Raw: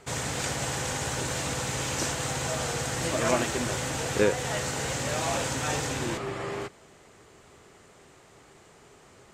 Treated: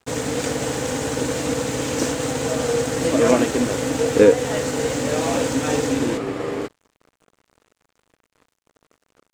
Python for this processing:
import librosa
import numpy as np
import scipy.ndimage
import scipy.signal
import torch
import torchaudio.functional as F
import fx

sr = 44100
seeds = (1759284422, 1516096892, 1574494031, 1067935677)

y = fx.small_body(x, sr, hz=(280.0, 460.0), ring_ms=65, db=16)
y = np.sign(y) * np.maximum(np.abs(y) - 10.0 ** (-42.5 / 20.0), 0.0)
y = F.gain(torch.from_numpy(y), 3.5).numpy()